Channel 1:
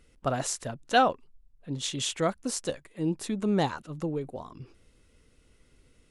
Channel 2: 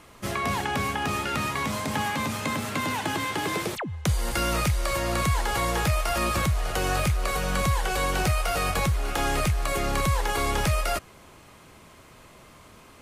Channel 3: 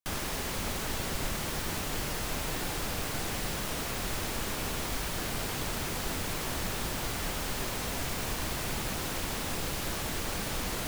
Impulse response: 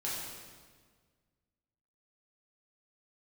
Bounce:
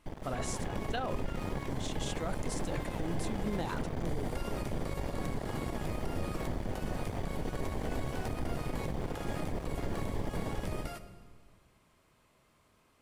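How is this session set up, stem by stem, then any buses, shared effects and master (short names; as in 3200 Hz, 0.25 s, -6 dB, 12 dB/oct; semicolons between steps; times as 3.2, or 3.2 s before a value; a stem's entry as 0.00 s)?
-8.5 dB, 0.00 s, no send, sustainer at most 55 dB/s
-19.0 dB, 0.00 s, send -12.5 dB, notch 6400 Hz, Q 29
-0.5 dB, 0.00 s, send -14.5 dB, AGC gain up to 8 dB; running mean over 33 samples; half-wave rectifier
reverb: on, RT60 1.6 s, pre-delay 4 ms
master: limiter -24.5 dBFS, peak gain reduction 12.5 dB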